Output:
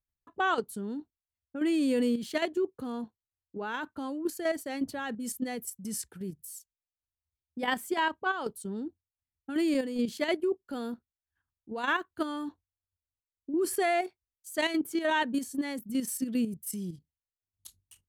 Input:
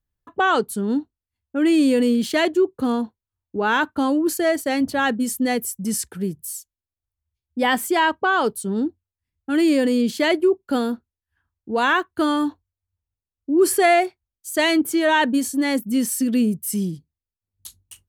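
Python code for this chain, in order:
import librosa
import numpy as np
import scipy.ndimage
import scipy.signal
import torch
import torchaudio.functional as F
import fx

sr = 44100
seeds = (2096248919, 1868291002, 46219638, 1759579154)

y = fx.level_steps(x, sr, step_db=9)
y = y * librosa.db_to_amplitude(-8.0)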